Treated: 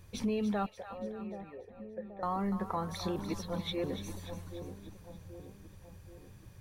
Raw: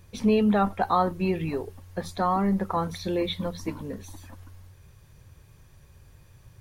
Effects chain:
downward compressor 2.5 to 1, threshold −31 dBFS, peak gain reduction 9.5 dB
0:00.66–0:02.23: formant resonators in series e
0:03.16–0:03.84: reverse
echo with a time of its own for lows and highs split 770 Hz, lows 779 ms, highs 291 ms, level −10 dB
level −2.5 dB

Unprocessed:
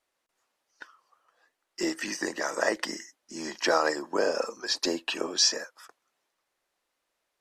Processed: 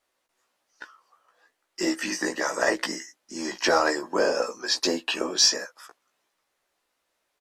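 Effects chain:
in parallel at −10.5 dB: asymmetric clip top −21 dBFS
on the sum: double-tracking delay 16 ms −4 dB

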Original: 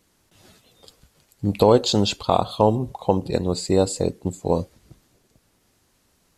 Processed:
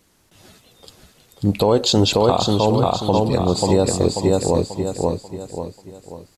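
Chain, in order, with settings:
on a send: repeating echo 538 ms, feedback 40%, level −4 dB
on the sum: brickwall limiter −9.5 dBFS, peak gain reduction 6.5 dB
level +4.5 dB

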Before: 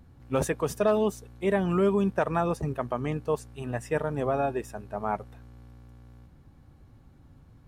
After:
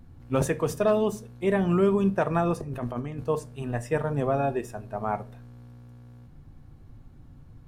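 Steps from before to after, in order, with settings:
low-shelf EQ 160 Hz +6.5 dB
0:02.60–0:03.24: compressor whose output falls as the input rises −33 dBFS, ratio −1
on a send: convolution reverb RT60 0.30 s, pre-delay 3 ms, DRR 10.5 dB

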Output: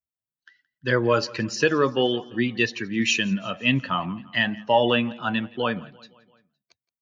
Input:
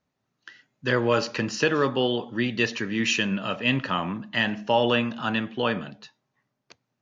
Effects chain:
spectral dynamics exaggerated over time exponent 1.5
on a send: repeating echo 171 ms, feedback 59%, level −23 dB
on the sum: level +4 dB

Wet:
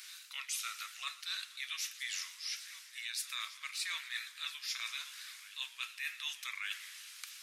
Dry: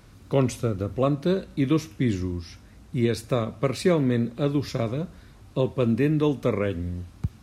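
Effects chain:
Bessel high-pass filter 2,700 Hz, order 6
reversed playback
downward compressor 6 to 1, threshold −51 dBFS, peak gain reduction 17.5 dB
reversed playback
backwards echo 1,184 ms −16.5 dB
feedback echo with a swinging delay time 119 ms, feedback 79%, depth 146 cents, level −19.5 dB
level +13.5 dB

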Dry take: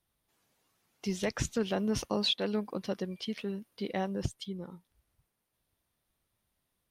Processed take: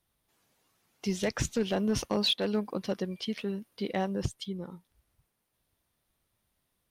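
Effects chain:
gain into a clipping stage and back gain 23 dB
level +2.5 dB

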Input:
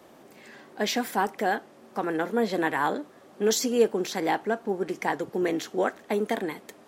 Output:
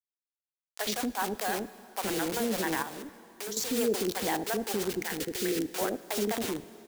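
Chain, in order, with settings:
adaptive Wiener filter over 25 samples
bit reduction 6 bits
high-shelf EQ 4,000 Hz +9.5 dB
0:00.84–0:01.30: transient designer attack −8 dB, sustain −1 dB
multiband delay without the direct sound highs, lows 70 ms, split 530 Hz
0:02.82–0:03.57: downward compressor 12 to 1, threshold −36 dBFS, peak gain reduction 19 dB
brickwall limiter −19.5 dBFS, peak gain reduction 10.5 dB
0:04.92–0:05.61: flat-topped bell 830 Hz −10 dB 1.2 octaves
dense smooth reverb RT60 3.5 s, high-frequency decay 0.8×, DRR 15.5 dB

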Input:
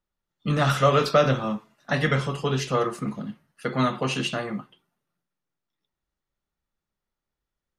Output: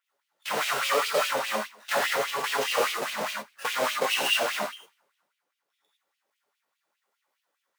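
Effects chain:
each half-wave held at its own peak
downward compressor 12 to 1, threshold −28 dBFS, peak gain reduction 17.5 dB
reverb whose tail is shaped and stops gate 130 ms flat, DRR −5 dB
auto-filter high-pass sine 4.9 Hz 500–2,900 Hz

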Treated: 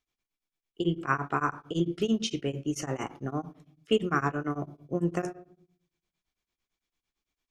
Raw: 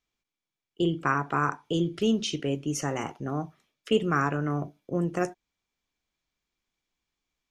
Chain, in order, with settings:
on a send at −12 dB: convolution reverb RT60 0.60 s, pre-delay 3 ms
on the sum: tremolo along a rectified sine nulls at 8.9 Hz

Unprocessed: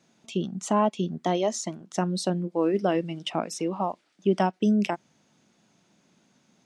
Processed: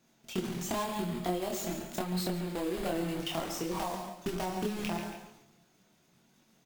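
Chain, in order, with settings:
one scale factor per block 3 bits
low-shelf EQ 73 Hz +8.5 dB
coupled-rooms reverb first 0.66 s, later 2.1 s, from −26 dB, DRR 9 dB
transient designer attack +3 dB, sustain +8 dB
repeating echo 139 ms, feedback 28%, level −11 dB
downward compressor, threshold −25 dBFS, peak gain reduction 10.5 dB
multi-voice chorus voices 6, 0.42 Hz, delay 26 ms, depth 4.8 ms
bad sample-rate conversion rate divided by 2×, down none, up hold
0:00.84–0:03.20: parametric band 5,800 Hz −10 dB 0.26 octaves
level −2 dB

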